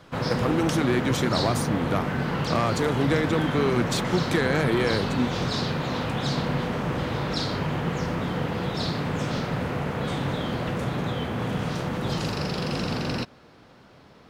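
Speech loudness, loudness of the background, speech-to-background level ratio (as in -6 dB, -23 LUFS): -26.5 LUFS, -28.0 LUFS, 1.5 dB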